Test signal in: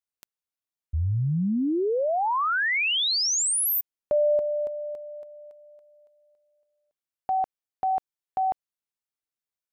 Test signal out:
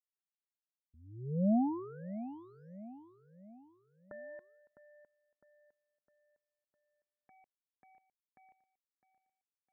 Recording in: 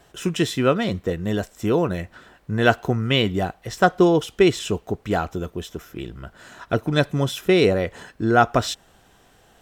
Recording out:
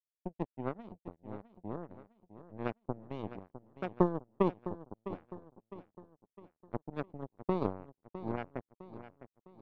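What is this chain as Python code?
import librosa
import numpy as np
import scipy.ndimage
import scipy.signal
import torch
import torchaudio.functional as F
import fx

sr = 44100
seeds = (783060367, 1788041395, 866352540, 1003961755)

y = fx.bandpass_q(x, sr, hz=220.0, q=1.4)
y = fx.power_curve(y, sr, exponent=3.0)
y = fx.echo_feedback(y, sr, ms=657, feedback_pct=44, wet_db=-13.0)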